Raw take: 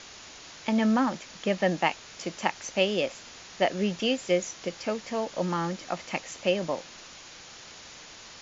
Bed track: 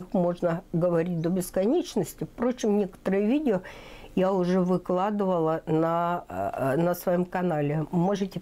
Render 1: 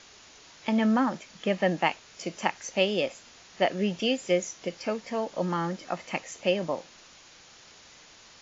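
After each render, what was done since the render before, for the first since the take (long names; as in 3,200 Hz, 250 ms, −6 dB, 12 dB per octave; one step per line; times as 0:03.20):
noise reduction from a noise print 6 dB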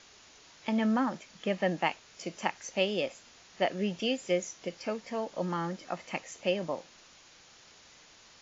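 level −4 dB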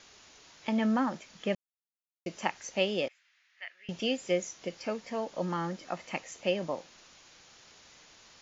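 0:01.55–0:02.26: silence
0:03.08–0:03.89: four-pole ladder band-pass 2,200 Hz, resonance 50%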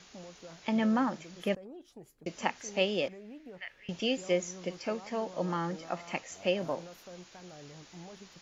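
mix in bed track −24 dB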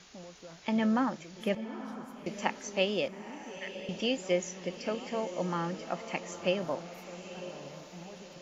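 feedback delay with all-pass diffusion 912 ms, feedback 44%, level −12 dB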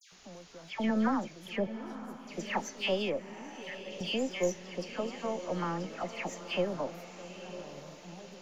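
gain on one half-wave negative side −3 dB
all-pass dispersion lows, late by 120 ms, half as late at 2,000 Hz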